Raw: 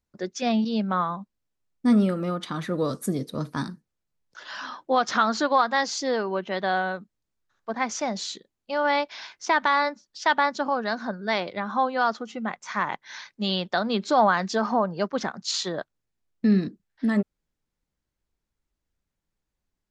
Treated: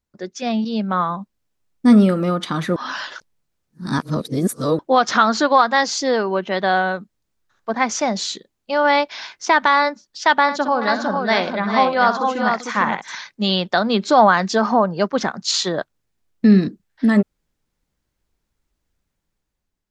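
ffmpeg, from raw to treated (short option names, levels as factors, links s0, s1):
-filter_complex "[0:a]asettb=1/sr,asplit=3[s0][s1][s2];[s0]atrim=end=10.424[s3];[s1]atrim=start=10.42:end=13.15,asetpts=PTS-STARTPTS,afade=t=in:d=0.004:c=qsin,afade=t=out:st=2.726:d=0.004:c=qsin,aecho=1:1:64|393|452:0.316|0.211|0.596,atrim=end_sample=120393[s4];[s2]atrim=start=13.146[s5];[s3][s4]acrossfade=d=0.004:c1=hsin:c2=qsin[s6];[s6][s5]acrossfade=d=0.004:c1=qsin:c2=hsin,asplit=3[s7][s8][s9];[s7]atrim=end=2.762[s10];[s8]atrim=start=2.758:end=4.792,asetpts=PTS-STARTPTS,areverse[s11];[s9]atrim=start=4.788[s12];[s10][s11]acrossfade=d=0.004:c1=hsin:c2=hsin[s13];[s13][s12]acrossfade=d=0.004:c1=hsin:c2=hsin,dynaudnorm=f=400:g=5:m=2.37,volume=1.12"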